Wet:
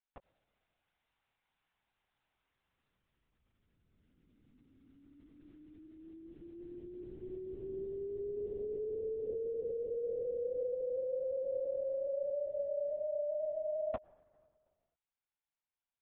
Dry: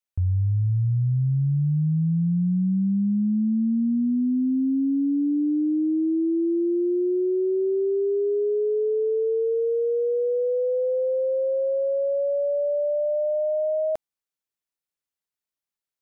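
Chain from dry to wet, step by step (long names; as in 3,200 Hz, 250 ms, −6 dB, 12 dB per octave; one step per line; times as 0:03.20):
ceiling on every frequency bin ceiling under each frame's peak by 19 dB
Butterworth high-pass 490 Hz 48 dB per octave
reversed playback
downward compressor 4 to 1, threshold −37 dBFS, peak gain reduction 11 dB
reversed playback
high-frequency loss of the air 200 metres
on a send at −23.5 dB: convolution reverb, pre-delay 77 ms
on the sum: linear-prediction vocoder at 8 kHz whisper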